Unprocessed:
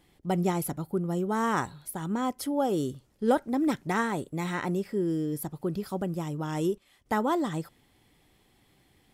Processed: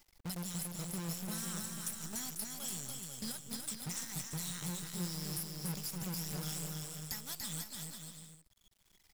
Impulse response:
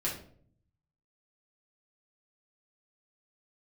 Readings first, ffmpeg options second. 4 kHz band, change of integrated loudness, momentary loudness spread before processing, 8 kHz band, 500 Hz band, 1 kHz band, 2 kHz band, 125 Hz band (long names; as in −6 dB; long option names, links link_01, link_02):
+2.0 dB, −10.0 dB, 6 LU, +5.0 dB, −23.0 dB, −21.0 dB, −13.5 dB, −8.5 dB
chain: -filter_complex "[0:a]afftfilt=real='re*pow(10,9/40*sin(2*PI*(0.72*log(max(b,1)*sr/1024/100)/log(2)-(-1)*(pts-256)/sr)))':imag='im*pow(10,9/40*sin(2*PI*(0.72*log(max(b,1)*sr/1024/100)/log(2)-(-1)*(pts-256)/sr)))':win_size=1024:overlap=0.75,anlmdn=0.00398,firequalizer=gain_entry='entry(150,0);entry(310,-30);entry(1300,-14);entry(5000,15);entry(10000,15)':delay=0.05:min_phase=1,acrossover=split=390[link_01][link_02];[link_02]acompressor=mode=upward:threshold=-44dB:ratio=2.5[link_03];[link_01][link_03]amix=inputs=2:normalize=0,alimiter=limit=-18dB:level=0:latency=1:release=273,acompressor=threshold=-40dB:ratio=16,acrusher=bits=8:dc=4:mix=0:aa=0.000001,asplit=2[link_04][link_05];[link_05]aecho=0:1:290|493|635.1|734.6|804.2:0.631|0.398|0.251|0.158|0.1[link_06];[link_04][link_06]amix=inputs=2:normalize=0,volume=1dB"